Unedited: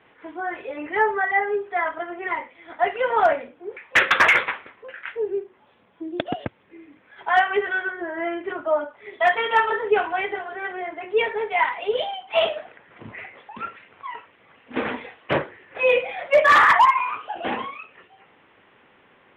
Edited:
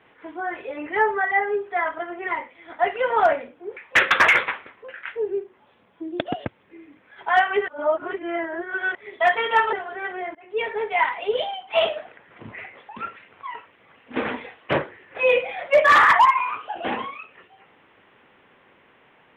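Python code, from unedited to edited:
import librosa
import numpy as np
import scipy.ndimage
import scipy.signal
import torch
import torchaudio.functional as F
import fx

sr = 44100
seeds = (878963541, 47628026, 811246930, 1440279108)

y = fx.edit(x, sr, fx.reverse_span(start_s=7.68, length_s=1.27),
    fx.cut(start_s=9.73, length_s=0.6),
    fx.fade_in_from(start_s=10.95, length_s=0.45, floor_db=-24.0), tone=tone)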